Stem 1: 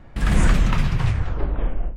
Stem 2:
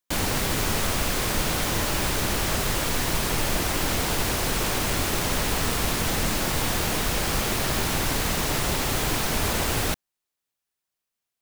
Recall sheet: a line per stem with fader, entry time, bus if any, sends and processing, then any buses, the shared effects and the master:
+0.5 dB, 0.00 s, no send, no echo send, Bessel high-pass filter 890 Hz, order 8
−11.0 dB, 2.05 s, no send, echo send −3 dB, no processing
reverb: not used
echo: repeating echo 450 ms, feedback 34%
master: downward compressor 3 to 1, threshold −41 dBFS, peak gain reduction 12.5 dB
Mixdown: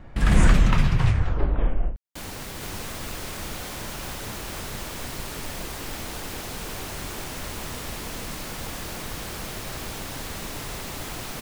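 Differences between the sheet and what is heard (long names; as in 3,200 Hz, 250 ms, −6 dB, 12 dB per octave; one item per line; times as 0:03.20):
stem 1: missing Bessel high-pass filter 890 Hz, order 8
master: missing downward compressor 3 to 1, threshold −41 dBFS, peak gain reduction 12.5 dB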